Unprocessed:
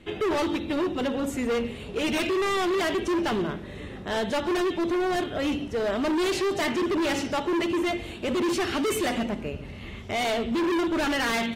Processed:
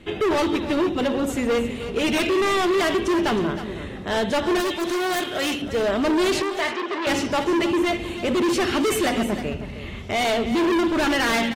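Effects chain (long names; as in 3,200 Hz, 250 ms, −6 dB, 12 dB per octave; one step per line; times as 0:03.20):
0:04.60–0:05.62: spectral tilt +3 dB per octave
0:06.42–0:07.07: band-pass filter 560–3,700 Hz
single-tap delay 314 ms −12 dB
wave folding −20.5 dBFS
level +4.5 dB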